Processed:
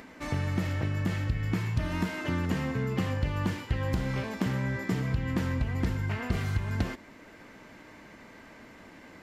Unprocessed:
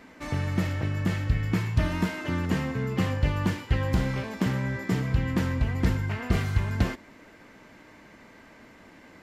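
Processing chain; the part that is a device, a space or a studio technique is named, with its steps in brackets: upward and downward compression (upward compressor, threshold -46 dBFS; compression 4:1, threshold -25 dBFS, peak gain reduction 8 dB)

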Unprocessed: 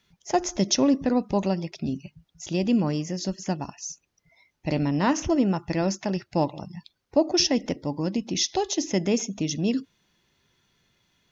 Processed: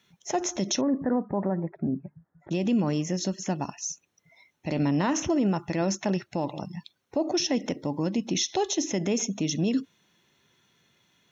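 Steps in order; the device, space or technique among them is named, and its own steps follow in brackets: PA system with an anti-feedback notch (high-pass 120 Hz 12 dB/octave; Butterworth band-stop 4.8 kHz, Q 7.1; peak limiter -20 dBFS, peak gain reduction 10.5 dB); 0.81–2.51 s: elliptic low-pass 1.8 kHz, stop band 40 dB; trim +2.5 dB

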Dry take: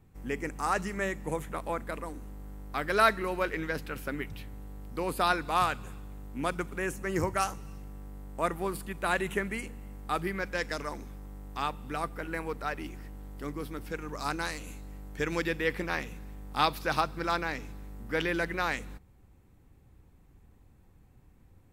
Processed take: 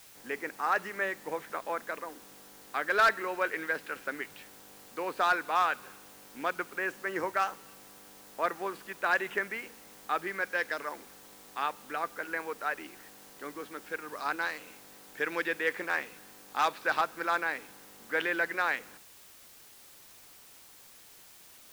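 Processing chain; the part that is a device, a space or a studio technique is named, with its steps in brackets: drive-through speaker (band-pass 420–3500 Hz; peaking EQ 1.6 kHz +5.5 dB 0.36 oct; hard clipper -18 dBFS, distortion -16 dB; white noise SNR 20 dB)

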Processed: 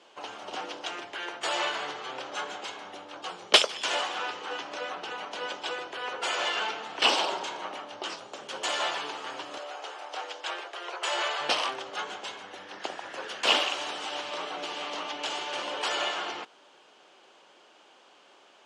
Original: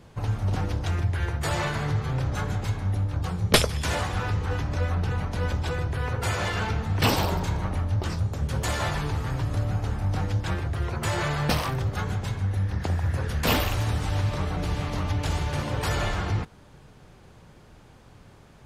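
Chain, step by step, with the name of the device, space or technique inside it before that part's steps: phone speaker on a table (cabinet simulation 380–7800 Hz, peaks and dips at 460 Hz -5 dB, 1.9 kHz -3 dB, 3 kHz +9 dB); 9.58–11.41 s: inverse Chebyshev high-pass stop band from 150 Hz, stop band 50 dB

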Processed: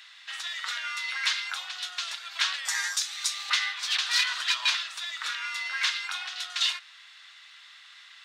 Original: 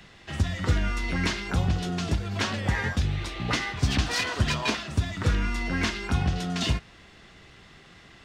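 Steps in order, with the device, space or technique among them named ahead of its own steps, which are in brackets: 2.65–3.50 s: resonant high shelf 4.5 kHz +12.5 dB, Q 1.5; headphones lying on a table (high-pass 1.2 kHz 24 dB/octave; peaking EQ 3.8 kHz +7 dB 0.48 oct); trim +1.5 dB

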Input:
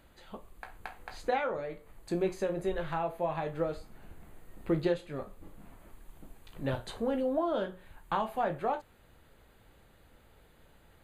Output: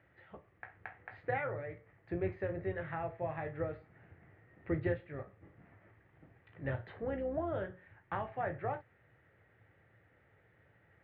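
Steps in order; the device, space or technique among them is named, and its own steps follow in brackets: sub-octave bass pedal (octave divider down 2 oct, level -2 dB; cabinet simulation 80–2400 Hz, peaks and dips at 110 Hz +8 dB, 230 Hz -8 dB, 1 kHz -6 dB, 1.9 kHz +10 dB); trim -5.5 dB

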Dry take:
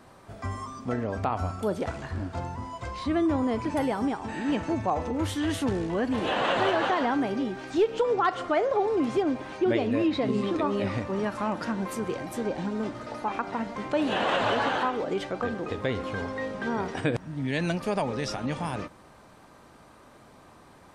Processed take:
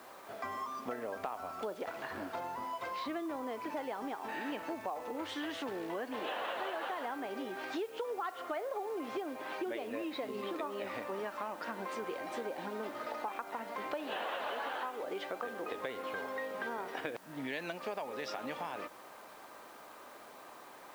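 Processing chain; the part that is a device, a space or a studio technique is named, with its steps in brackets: baby monitor (band-pass 440–4100 Hz; compression, threshold -39 dBFS, peak gain reduction 17.5 dB; white noise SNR 23 dB); trim +2.5 dB

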